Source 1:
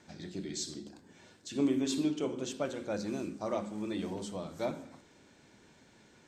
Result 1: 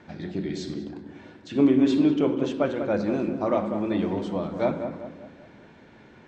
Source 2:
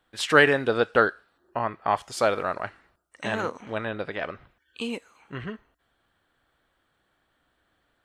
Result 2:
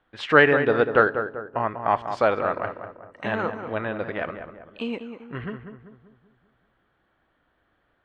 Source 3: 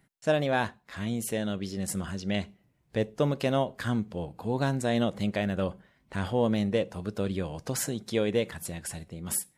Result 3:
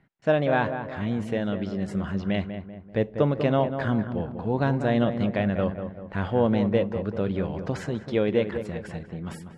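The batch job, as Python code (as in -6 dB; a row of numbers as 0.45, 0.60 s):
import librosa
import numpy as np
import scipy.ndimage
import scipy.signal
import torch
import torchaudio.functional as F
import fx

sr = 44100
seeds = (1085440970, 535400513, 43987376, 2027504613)

p1 = scipy.signal.sosfilt(scipy.signal.butter(2, 2500.0, 'lowpass', fs=sr, output='sos'), x)
p2 = p1 + fx.echo_filtered(p1, sr, ms=194, feedback_pct=48, hz=1600.0, wet_db=-8, dry=0)
y = p2 * 10.0 ** (-26 / 20.0) / np.sqrt(np.mean(np.square(p2)))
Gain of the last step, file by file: +10.0, +2.0, +3.5 dB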